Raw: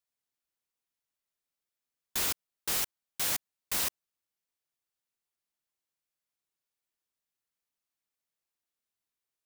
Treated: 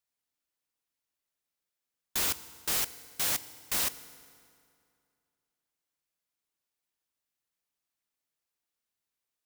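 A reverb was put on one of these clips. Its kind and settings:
feedback delay network reverb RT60 2.4 s, low-frequency decay 1×, high-frequency decay 0.75×, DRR 14 dB
level +1 dB

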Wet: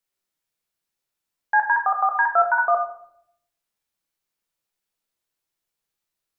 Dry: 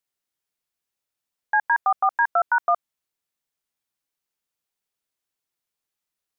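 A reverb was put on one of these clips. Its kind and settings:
rectangular room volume 130 cubic metres, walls mixed, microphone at 0.7 metres

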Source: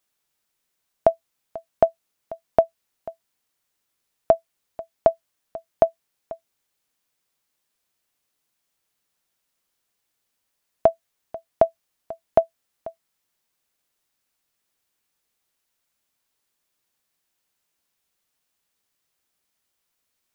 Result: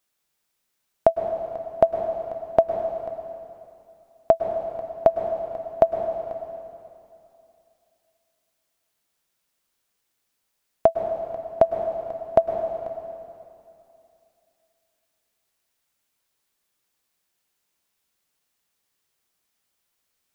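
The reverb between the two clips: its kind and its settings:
dense smooth reverb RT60 2.7 s, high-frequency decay 0.95×, pre-delay 95 ms, DRR 5 dB

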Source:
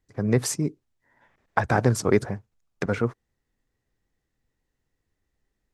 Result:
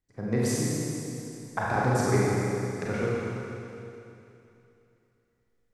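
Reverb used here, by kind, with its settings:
four-comb reverb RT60 2.9 s, combs from 32 ms, DRR −6.5 dB
level −9 dB

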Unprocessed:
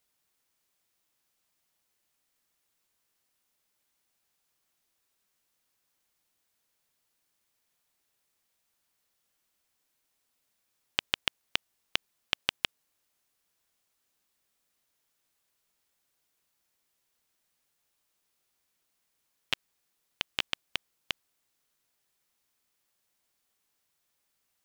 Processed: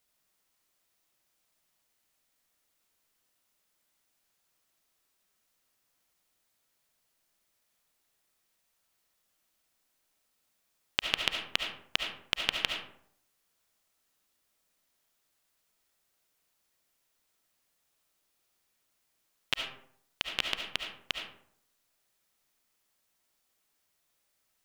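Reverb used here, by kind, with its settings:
comb and all-pass reverb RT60 0.66 s, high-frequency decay 0.5×, pre-delay 30 ms, DRR 2.5 dB

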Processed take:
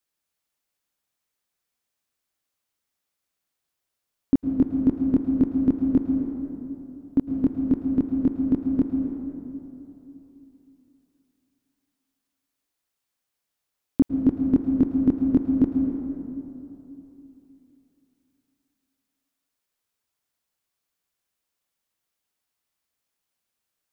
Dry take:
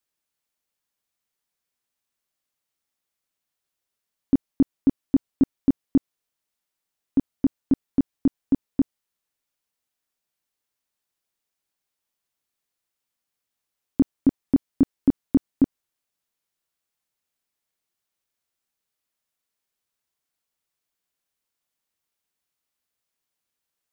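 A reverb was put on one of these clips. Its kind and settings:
dense smooth reverb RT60 3.2 s, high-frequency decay 0.5×, pre-delay 95 ms, DRR 3 dB

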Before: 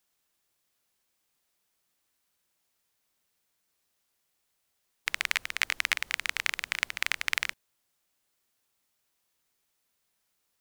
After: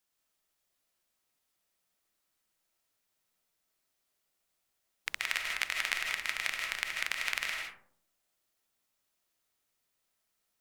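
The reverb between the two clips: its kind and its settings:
comb and all-pass reverb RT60 0.62 s, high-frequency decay 0.35×, pre-delay 115 ms, DRR 0.5 dB
level −5.5 dB

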